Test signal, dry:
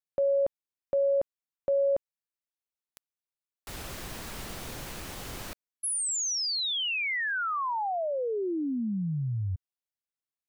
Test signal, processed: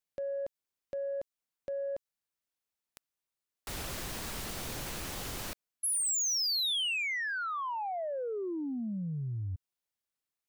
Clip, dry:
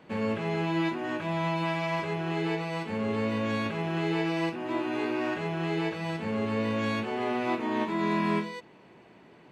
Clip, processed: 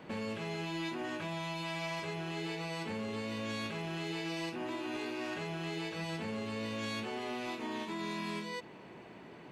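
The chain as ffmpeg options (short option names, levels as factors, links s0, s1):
-filter_complex "[0:a]acrossover=split=3300[s0][s1];[s0]acompressor=threshold=0.0178:ratio=12:attack=0.14:release=177:detection=rms[s2];[s2][s1]amix=inputs=2:normalize=0,asoftclip=type=tanh:threshold=0.0282,volume=1.41"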